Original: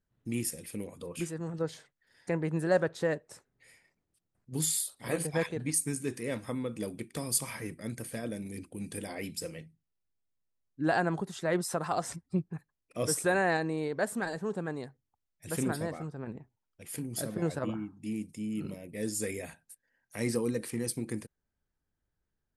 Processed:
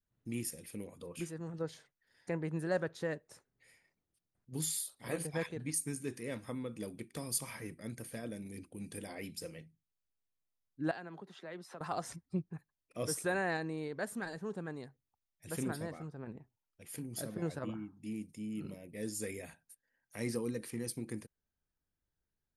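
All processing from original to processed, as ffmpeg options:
-filter_complex "[0:a]asettb=1/sr,asplit=3[s0][s1][s2];[s0]atrim=end=10.914[s3];[s1]atrim=start=10.91:end=11.81,asetpts=PTS-STARTPTS,afade=t=in:d=0.004:c=qsin,afade=t=out:st=0.896:d=0.004:c=qsin,acrossover=split=210 3700:gain=0.0794 1 0.126[s4][s5][s6];[s4][s5][s6]amix=inputs=3:normalize=0,acrossover=split=160|3000[s7][s8][s9];[s8]acompressor=threshold=0.00631:ratio=2.5:attack=3.2:release=140:knee=2.83:detection=peak[s10];[s7][s10][s9]amix=inputs=3:normalize=0[s11];[s2]atrim=start=11.806[s12];[s3][s11]acrossfade=d=0.004:c1=hsin:c2=qsin[s13];[s13][s12]acrossfade=d=0.004:c1=qsin:c2=hsin,bandreject=f=7800:w=9.1,adynamicequalizer=threshold=0.00891:dfrequency=660:dqfactor=1:tfrequency=660:tqfactor=1:attack=5:release=100:ratio=0.375:range=2:mode=cutabove:tftype=bell,volume=0.531"

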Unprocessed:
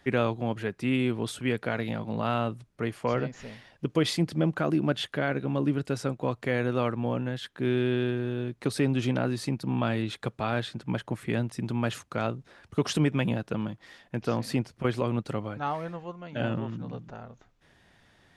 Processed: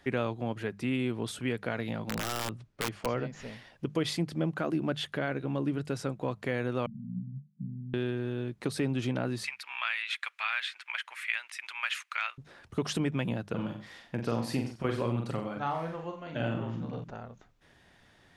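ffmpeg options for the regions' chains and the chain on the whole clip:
-filter_complex "[0:a]asettb=1/sr,asplit=3[s0][s1][s2];[s0]atrim=end=2.094[s3];[s1]atrim=start=2.09:end=3.06,asetpts=PTS-STARTPTS,afade=t=in:d=0.004:c=qsin,afade=t=out:st=0.966:d=0.004:c=qsin,lowpass=6300,bandreject=f=50:t=h:w=6,bandreject=f=100:t=h:w=6,bandreject=f=150:t=h:w=6,aeval=exprs='(mod(11.9*val(0)+1,2)-1)/11.9':c=same[s4];[s2]atrim=start=3.056[s5];[s3][s4]acrossfade=d=0.004:c1=hsin:c2=qsin[s6];[s6][s5]acrossfade=d=0.004:c1=qsin:c2=hsin,asettb=1/sr,asplit=3[s7][s8][s9];[s7]atrim=end=6.864[s10];[s8]atrim=start=6.86:end=7.94,asetpts=PTS-STARTPTS,afade=t=in:d=0.004:c=qsin,afade=t=out:st=1.076:d=0.004:c=qsin,asuperpass=centerf=170:order=8:qfactor=2.4,acontrast=70[s11];[s9]atrim=start=7.936[s12];[s10][s11]acrossfade=d=0.004:c1=hsin:c2=qsin[s13];[s13][s12]acrossfade=d=0.004:c1=qsin:c2=hsin,asettb=1/sr,asplit=3[s14][s15][s16];[s14]atrim=end=9.444[s17];[s15]atrim=start=9.44:end=12.38,asetpts=PTS-STARTPTS,afade=t=in:d=0.004:c=qsin,afade=t=out:st=2.936:d=0.004:c=qsin,highpass=f=1100:w=0.5412,highpass=f=1100:w=1.3066,equalizer=f=2300:t=o:w=1:g=14[s18];[s16]atrim=start=12.376[s19];[s17][s18]acrossfade=d=0.004:c1=hsin:c2=qsin[s20];[s20][s19]acrossfade=d=0.004:c1=qsin:c2=hsin,asettb=1/sr,asplit=3[s21][s22][s23];[s21]atrim=end=13.514[s24];[s22]atrim=start=13.51:end=17.04,asetpts=PTS-STARTPTS,afade=t=in:d=0.004:c=qsin,afade=t=out:st=3.526:d=0.004:c=qsin,asplit=2[s25][s26];[s26]adelay=43,volume=0.562[s27];[s25][s27]amix=inputs=2:normalize=0,atrim=end_sample=155673,aecho=1:1:91:0.251,atrim=end_sample=155673[s28];[s23]atrim=start=17.036[s29];[s24][s28]acrossfade=d=0.004:c1=hsin:c2=qsin[s30];[s30][s29]acrossfade=d=0.004:c1=qsin:c2=hsin,bandreject=f=50:t=h:w=6,bandreject=f=100:t=h:w=6,bandreject=f=150:t=h:w=6,bandreject=f=200:t=h:w=6,acompressor=threshold=0.02:ratio=1.5"

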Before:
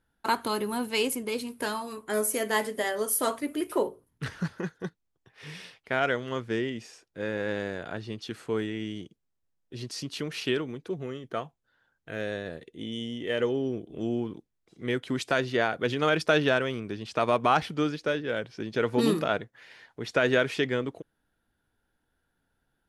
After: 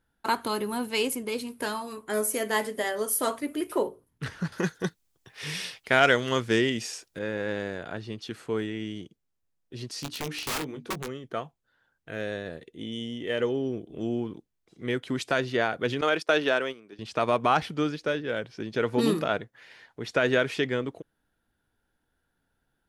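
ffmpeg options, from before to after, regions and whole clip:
-filter_complex "[0:a]asettb=1/sr,asplit=3[s0][s1][s2];[s0]atrim=end=4.524[s3];[s1]atrim=start=4.52:end=7.19,asetpts=PTS-STARTPTS,afade=t=in:d=0.004:c=qsin,afade=t=out:st=2.666:d=0.004:c=qsin,highshelf=f=3200:g=11,acontrast=31[s4];[s2]atrim=start=7.186[s5];[s3][s4]acrossfade=d=0.004:c1=hsin:c2=qsin[s6];[s6][s5]acrossfade=d=0.004:c1=qsin:c2=hsin,asettb=1/sr,asplit=3[s7][s8][s9];[s7]atrim=end=9.994[s10];[s8]atrim=start=9.99:end=11.08,asetpts=PTS-STARTPTS,afade=t=in:d=0.004:c=qsin,afade=t=out:st=1.086:d=0.004:c=qsin,bandreject=f=60:t=h:w=6,bandreject=f=120:t=h:w=6,bandreject=f=180:t=h:w=6,bandreject=f=240:t=h:w=6,bandreject=f=300:t=h:w=6,aeval=exprs='(mod(20*val(0)+1,2)-1)/20':c=same,asplit=2[s11][s12];[s12]adelay=20,volume=0.355[s13];[s11][s13]amix=inputs=2:normalize=0,atrim=end_sample=48069[s14];[s9]atrim=start=11.076[s15];[s10][s14]acrossfade=d=0.004:c1=hsin:c2=qsin[s16];[s16][s15]acrossfade=d=0.004:c1=qsin:c2=hsin,asettb=1/sr,asplit=3[s17][s18][s19];[s17]atrim=end=16.014[s20];[s18]atrim=start=16.01:end=16.99,asetpts=PTS-STARTPTS,afade=t=in:d=0.004:c=qsin,afade=t=out:st=0.976:d=0.004:c=qsin,highpass=290,agate=range=0.251:threshold=0.02:ratio=16:release=100:detection=peak[s21];[s19]atrim=start=16.986[s22];[s20][s21]acrossfade=d=0.004:c1=hsin:c2=qsin[s23];[s23][s22]acrossfade=d=0.004:c1=qsin:c2=hsin"

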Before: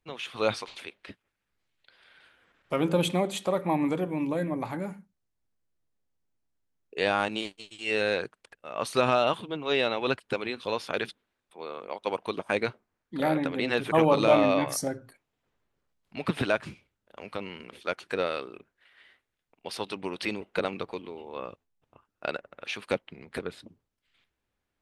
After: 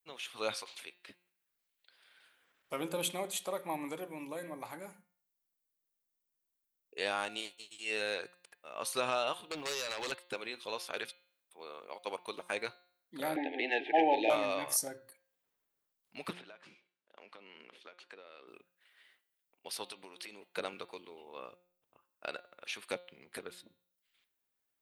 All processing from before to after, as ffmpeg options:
-filter_complex "[0:a]asettb=1/sr,asplit=3[s0][s1][s2];[s0]atrim=end=9.434[s3];[s1]atrim=start=9.43:end=10.12,asetpts=PTS-STARTPTS,afade=t=in:d=0.004:c=qsin,afade=t=out:st=0.686:d=0.004:c=qsin,agate=range=0.141:threshold=0.0141:ratio=16:release=100:detection=peak,acompressor=threshold=0.0178:ratio=16:attack=3.2:release=140:knee=1:detection=peak,aeval=exprs='0.0596*sin(PI/2*3.98*val(0)/0.0596)':c=same[s4];[s2]atrim=start=10.116[s5];[s3][s4]acrossfade=d=0.004:c1=hsin:c2=qsin[s6];[s6][s5]acrossfade=d=0.004:c1=qsin:c2=hsin,asettb=1/sr,asplit=3[s7][s8][s9];[s7]atrim=end=13.364[s10];[s8]atrim=start=13.36:end=14.3,asetpts=PTS-STARTPTS,afade=t=in:d=0.004:c=qsin,afade=t=out:st=0.936:d=0.004:c=qsin,highpass=f=260:w=0.5412,highpass=f=260:w=1.3066,equalizer=f=320:t=q:w=4:g=4,equalizer=f=540:t=q:w=4:g=-6,equalizer=f=790:t=q:w=4:g=8,lowpass=f=3000:w=0.5412,lowpass=f=3000:w=1.3066,acontrast=34,asuperstop=centerf=1200:order=20:qfactor=1.7[s11];[s9]atrim=start=14.296[s12];[s10][s11]acrossfade=d=0.004:c1=hsin:c2=qsin[s13];[s13][s12]acrossfade=d=0.004:c1=qsin:c2=hsin,asettb=1/sr,asplit=3[s14][s15][s16];[s14]atrim=end=16.334[s17];[s15]atrim=start=16.33:end=18.48,asetpts=PTS-STARTPTS,afade=t=in:d=0.004:c=qsin,afade=t=out:st=2.146:d=0.004:c=qsin,acompressor=threshold=0.0112:ratio=10:attack=3.2:release=140:knee=1:detection=peak,highpass=220,lowpass=4200[s18];[s16]atrim=start=18.476[s19];[s17][s18]acrossfade=d=0.004:c1=hsin:c2=qsin[s20];[s20][s19]acrossfade=d=0.004:c1=qsin:c2=hsin,asettb=1/sr,asplit=3[s21][s22][s23];[s21]atrim=end=19.924[s24];[s22]atrim=start=19.92:end=20.56,asetpts=PTS-STARTPTS,afade=t=in:d=0.004:c=qsin,afade=t=out:st=0.636:d=0.004:c=qsin,lowshelf=f=180:g=-9,acompressor=threshold=0.0158:ratio=12:attack=3.2:release=140:knee=1:detection=peak[s25];[s23]atrim=start=20.556[s26];[s24][s25]acrossfade=d=0.004:c1=hsin:c2=qsin[s27];[s27][s26]acrossfade=d=0.004:c1=qsin:c2=hsin,aemphasis=mode=production:type=bsi,bandreject=f=177.9:t=h:w=4,bandreject=f=355.8:t=h:w=4,bandreject=f=533.7:t=h:w=4,bandreject=f=711.6:t=h:w=4,bandreject=f=889.5:t=h:w=4,bandreject=f=1067.4:t=h:w=4,bandreject=f=1245.3:t=h:w=4,bandreject=f=1423.2:t=h:w=4,bandreject=f=1601.1:t=h:w=4,bandreject=f=1779:t=h:w=4,bandreject=f=1956.9:t=h:w=4,bandreject=f=2134.8:t=h:w=4,bandreject=f=2312.7:t=h:w=4,bandreject=f=2490.6:t=h:w=4,bandreject=f=2668.5:t=h:w=4,bandreject=f=2846.4:t=h:w=4,bandreject=f=3024.3:t=h:w=4,bandreject=f=3202.2:t=h:w=4,bandreject=f=3380.1:t=h:w=4,bandreject=f=3558:t=h:w=4,bandreject=f=3735.9:t=h:w=4,bandreject=f=3913.8:t=h:w=4,bandreject=f=4091.7:t=h:w=4,bandreject=f=4269.6:t=h:w=4,bandreject=f=4447.5:t=h:w=4,bandreject=f=4625.4:t=h:w=4,adynamicequalizer=threshold=0.00501:dfrequency=220:dqfactor=1.1:tfrequency=220:tqfactor=1.1:attack=5:release=100:ratio=0.375:range=3:mode=cutabove:tftype=bell,volume=0.376"

